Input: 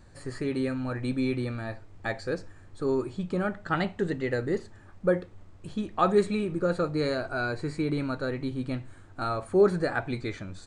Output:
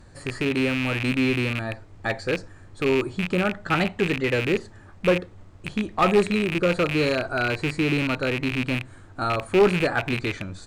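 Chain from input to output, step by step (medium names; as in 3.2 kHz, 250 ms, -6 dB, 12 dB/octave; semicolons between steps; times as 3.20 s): rattle on loud lows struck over -35 dBFS, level -21 dBFS; one-sided clip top -21 dBFS; trim +5 dB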